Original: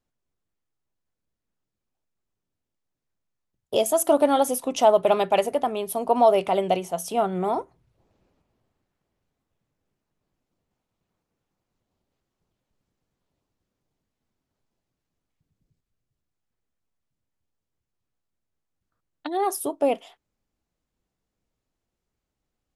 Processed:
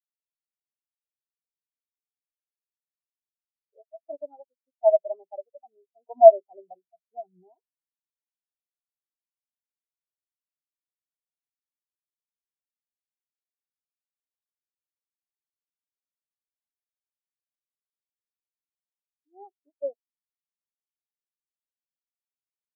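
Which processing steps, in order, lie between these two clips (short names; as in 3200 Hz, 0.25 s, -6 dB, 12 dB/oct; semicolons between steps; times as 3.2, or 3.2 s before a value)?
3.74–4.91 power-law curve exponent 1.4; spectral expander 4:1; gain +5.5 dB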